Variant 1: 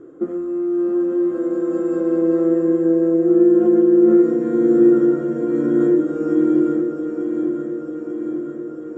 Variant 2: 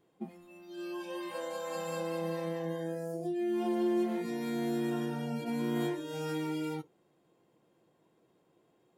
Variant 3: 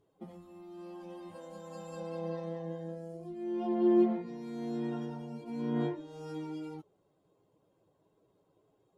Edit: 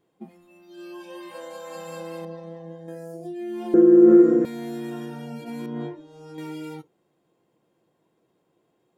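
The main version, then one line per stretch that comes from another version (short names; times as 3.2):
2
2.25–2.88 from 3
3.74–4.45 from 1
5.66–6.38 from 3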